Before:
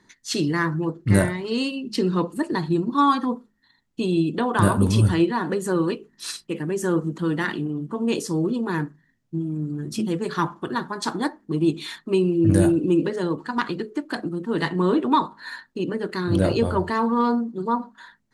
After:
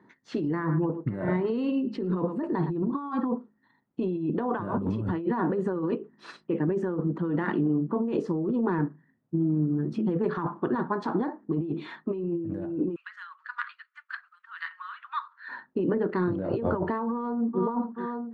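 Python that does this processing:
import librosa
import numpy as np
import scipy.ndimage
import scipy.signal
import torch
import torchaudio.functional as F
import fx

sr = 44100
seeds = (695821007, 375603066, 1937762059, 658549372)

y = fx.echo_single(x, sr, ms=111, db=-18.5, at=(0.48, 2.73))
y = fx.steep_highpass(y, sr, hz=1300.0, slope=48, at=(12.94, 15.48), fade=0.02)
y = fx.echo_throw(y, sr, start_s=17.1, length_s=0.52, ms=430, feedback_pct=70, wet_db=-13.0)
y = scipy.signal.sosfilt(scipy.signal.butter(2, 150.0, 'highpass', fs=sr, output='sos'), y)
y = fx.over_compress(y, sr, threshold_db=-27.0, ratio=-1.0)
y = scipy.signal.sosfilt(scipy.signal.butter(2, 1200.0, 'lowpass', fs=sr, output='sos'), y)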